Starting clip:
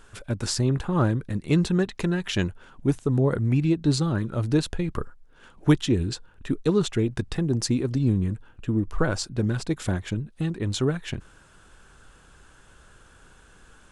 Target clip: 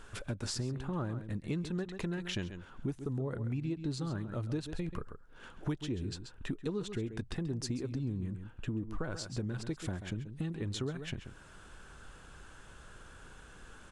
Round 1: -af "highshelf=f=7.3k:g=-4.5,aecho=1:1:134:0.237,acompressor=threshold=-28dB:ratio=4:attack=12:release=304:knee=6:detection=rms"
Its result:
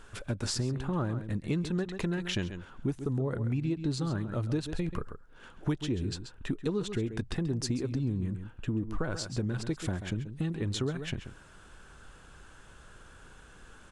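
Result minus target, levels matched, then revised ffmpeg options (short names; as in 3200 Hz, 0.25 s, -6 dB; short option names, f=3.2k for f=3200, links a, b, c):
compressor: peak gain reduction -5 dB
-af "highshelf=f=7.3k:g=-4.5,aecho=1:1:134:0.237,acompressor=threshold=-34.5dB:ratio=4:attack=12:release=304:knee=6:detection=rms"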